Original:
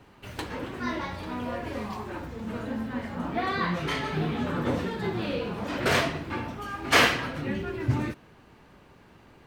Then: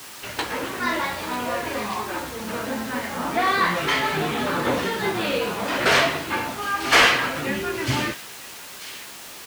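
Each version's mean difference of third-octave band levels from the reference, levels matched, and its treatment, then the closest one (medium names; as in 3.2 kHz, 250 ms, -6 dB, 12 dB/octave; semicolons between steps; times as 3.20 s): 8.0 dB: word length cut 8-bit, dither triangular; overdrive pedal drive 16 dB, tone 6.4 kHz, clips at -7.5 dBFS; doubling 15 ms -11 dB; feedback echo behind a high-pass 945 ms, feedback 33%, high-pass 3.2 kHz, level -9 dB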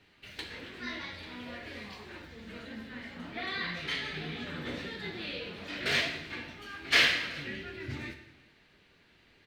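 5.0 dB: graphic EQ 125/1000/2000/4000 Hz -4/-7/+9/+11 dB; flange 1.8 Hz, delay 9 ms, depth 7.6 ms, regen +64%; delay 379 ms -23 dB; gated-style reverb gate 300 ms falling, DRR 7.5 dB; trim -7 dB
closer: second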